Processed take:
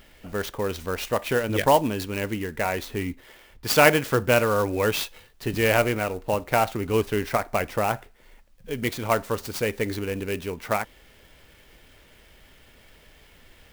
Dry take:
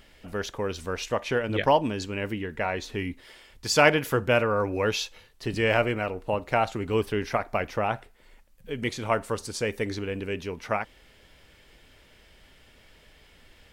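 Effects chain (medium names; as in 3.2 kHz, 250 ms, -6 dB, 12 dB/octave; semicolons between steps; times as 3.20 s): 2.94–3.67 s: low-pass 2.8 kHz 6 dB/octave; sampling jitter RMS 0.028 ms; trim +2.5 dB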